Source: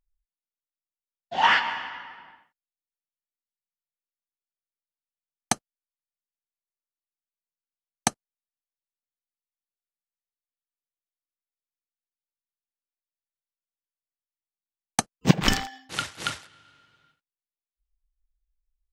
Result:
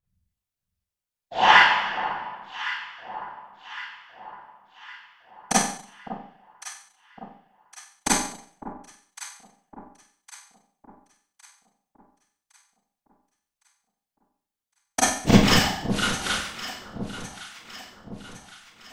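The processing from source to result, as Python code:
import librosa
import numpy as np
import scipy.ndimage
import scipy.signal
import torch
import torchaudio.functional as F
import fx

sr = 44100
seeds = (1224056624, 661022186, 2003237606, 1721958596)

y = fx.whisperise(x, sr, seeds[0])
y = fx.echo_alternate(y, sr, ms=555, hz=1100.0, feedback_pct=68, wet_db=-11)
y = fx.rev_schroeder(y, sr, rt60_s=0.55, comb_ms=31, drr_db=-9.0)
y = F.gain(torch.from_numpy(y), -3.5).numpy()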